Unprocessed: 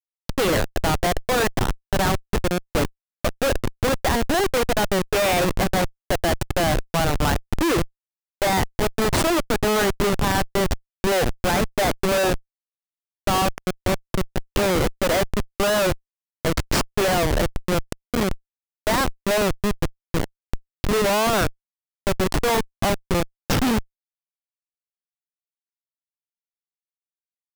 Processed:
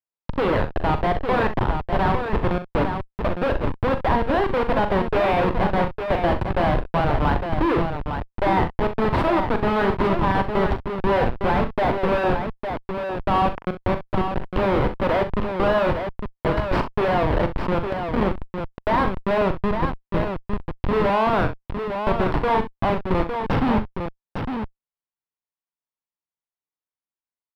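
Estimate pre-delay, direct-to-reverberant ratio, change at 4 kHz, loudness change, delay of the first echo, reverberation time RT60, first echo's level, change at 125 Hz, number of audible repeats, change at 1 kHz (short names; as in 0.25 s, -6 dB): none, none, -9.0 dB, 0.0 dB, 41 ms, none, -10.0 dB, +1.0 dB, 2, +3.0 dB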